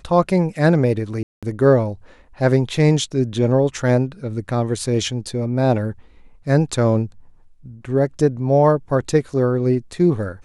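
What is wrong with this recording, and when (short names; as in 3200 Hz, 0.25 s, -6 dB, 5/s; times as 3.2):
1.23–1.43 gap 0.196 s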